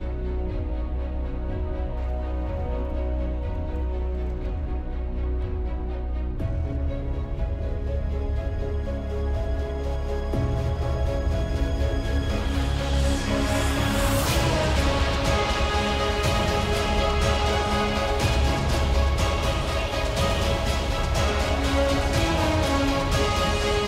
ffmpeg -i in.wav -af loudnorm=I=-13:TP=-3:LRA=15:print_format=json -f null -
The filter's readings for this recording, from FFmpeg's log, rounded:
"input_i" : "-25.2",
"input_tp" : "-10.2",
"input_lra" : "6.7",
"input_thresh" : "-35.2",